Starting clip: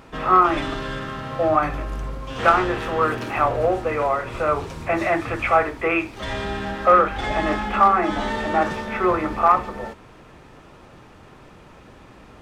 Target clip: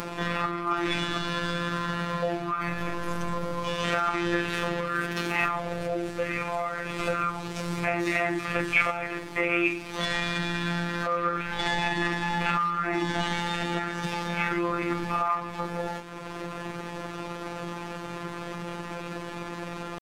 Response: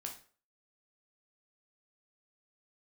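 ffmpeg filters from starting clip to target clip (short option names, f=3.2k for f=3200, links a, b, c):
-filter_complex "[0:a]lowshelf=f=60:g=-12,asplit=2[a][b];[b]acompressor=mode=upward:threshold=-22dB:ratio=2.5,volume=1dB[c];[a][c]amix=inputs=2:normalize=0,alimiter=limit=-7.5dB:level=0:latency=1:release=140,acrossover=split=220|1600[d][e][f];[e]acompressor=threshold=-27dB:ratio=10[g];[d][g][f]amix=inputs=3:normalize=0,atempo=0.62,afftfilt=real='hypot(re,im)*cos(PI*b)':imag='0':win_size=1024:overlap=0.75"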